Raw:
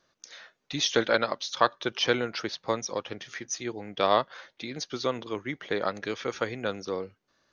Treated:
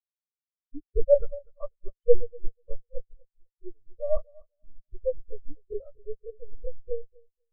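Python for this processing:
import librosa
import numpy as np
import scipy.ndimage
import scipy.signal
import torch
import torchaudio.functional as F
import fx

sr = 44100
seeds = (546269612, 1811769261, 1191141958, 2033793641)

y = fx.lpc_vocoder(x, sr, seeds[0], excitation='pitch_kept', order=16)
y = scipy.signal.sosfilt(scipy.signal.butter(2, 1200.0, 'lowpass', fs=sr, output='sos'), y)
y = fx.leveller(y, sr, passes=3)
y = fx.low_shelf(y, sr, hz=85.0, db=8.5)
y = fx.echo_feedback(y, sr, ms=245, feedback_pct=48, wet_db=-6.5)
y = fx.spectral_expand(y, sr, expansion=4.0)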